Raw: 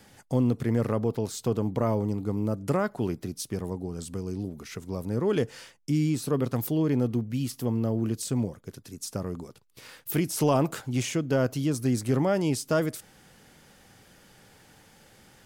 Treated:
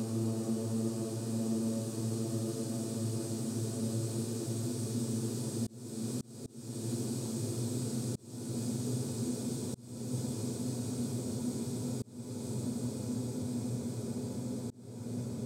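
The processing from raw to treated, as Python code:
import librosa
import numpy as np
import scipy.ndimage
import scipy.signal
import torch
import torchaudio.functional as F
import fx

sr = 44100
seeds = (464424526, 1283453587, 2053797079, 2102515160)

y = fx.paulstretch(x, sr, seeds[0], factor=28.0, window_s=1.0, from_s=8.01)
y = fx.auto_swell(y, sr, attack_ms=460.0)
y = y * librosa.db_to_amplitude(-6.5)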